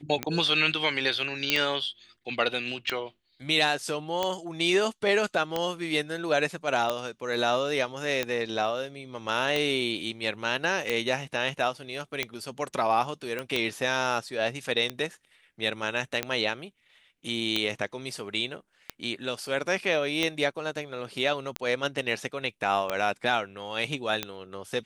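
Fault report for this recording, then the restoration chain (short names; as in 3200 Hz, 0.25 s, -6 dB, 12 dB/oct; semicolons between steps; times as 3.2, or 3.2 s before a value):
tick 45 rpm -12 dBFS
1.5 pop -6 dBFS
13.39 pop -18 dBFS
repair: de-click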